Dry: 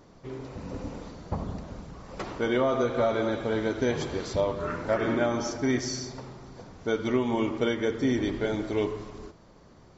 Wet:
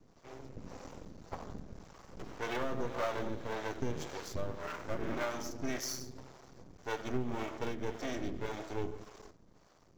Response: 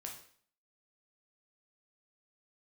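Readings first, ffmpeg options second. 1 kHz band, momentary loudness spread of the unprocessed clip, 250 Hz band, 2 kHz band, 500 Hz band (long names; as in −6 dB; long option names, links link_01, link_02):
−7.5 dB, 17 LU, −12.5 dB, −8.5 dB, −12.0 dB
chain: -filter_complex "[0:a]aeval=exprs='max(val(0),0)':channel_layout=same,acrossover=split=440[link_01][link_02];[link_01]aeval=exprs='val(0)*(1-0.7/2+0.7/2*cos(2*PI*1.8*n/s))':channel_layout=same[link_03];[link_02]aeval=exprs='val(0)*(1-0.7/2-0.7/2*cos(2*PI*1.8*n/s))':channel_layout=same[link_04];[link_03][link_04]amix=inputs=2:normalize=0,aexciter=amount=1.9:drive=1.6:freq=5500,volume=-2.5dB"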